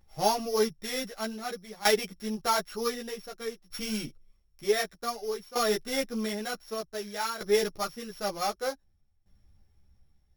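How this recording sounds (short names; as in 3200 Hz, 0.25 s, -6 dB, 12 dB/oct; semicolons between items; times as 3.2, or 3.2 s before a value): a buzz of ramps at a fixed pitch in blocks of 8 samples; tremolo saw down 0.54 Hz, depth 85%; a shimmering, thickened sound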